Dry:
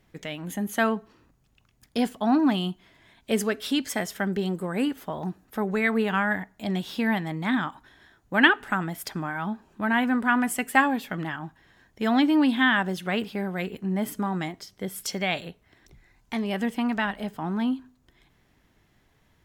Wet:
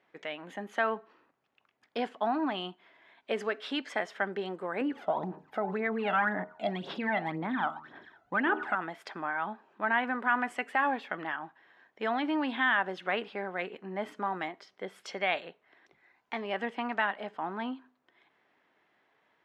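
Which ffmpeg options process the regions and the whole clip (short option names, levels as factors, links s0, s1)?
-filter_complex "[0:a]asettb=1/sr,asplit=3[s0][s1][s2];[s0]atrim=end=4.814[s3];[s1]atrim=start=4.81:end=8.75,asetpts=PTS-STARTPTS,afade=t=in:d=0.004:c=qsin,afade=t=out:st=3.936:d=0.004:c=qsin,lowshelf=f=460:g=11.5,bandreject=f=77.95:t=h:w=4,bandreject=f=155.9:t=h:w=4,bandreject=f=233.85:t=h:w=4,bandreject=f=311.8:t=h:w=4,bandreject=f=389.75:t=h:w=4,bandreject=f=467.7:t=h:w=4,bandreject=f=545.65:t=h:w=4,bandreject=f=623.6:t=h:w=4,bandreject=f=701.55:t=h:w=4,bandreject=f=779.5:t=h:w=4,bandreject=f=857.45:t=h:w=4,bandreject=f=935.4:t=h:w=4,bandreject=f=1013.35:t=h:w=4,bandreject=f=1091.3:t=h:w=4,bandreject=f=1169.25:t=h:w=4,bandreject=f=1247.2:t=h:w=4,bandreject=f=1325.15:t=h:w=4,bandreject=f=1403.1:t=h:w=4,bandreject=f=1481.05:t=h:w=4,aphaser=in_gain=1:out_gain=1:delay=1.5:decay=0.67:speed=1.9:type=sinusoidal[s4];[s2]atrim=start=8.746[s5];[s3][s4]acrossfade=d=0.004:c1=hsin:c2=qsin[s6];[s6][s5]acrossfade=d=0.004:c1=qsin:c2=hsin,lowpass=2500,alimiter=limit=0.158:level=0:latency=1:release=93,highpass=480"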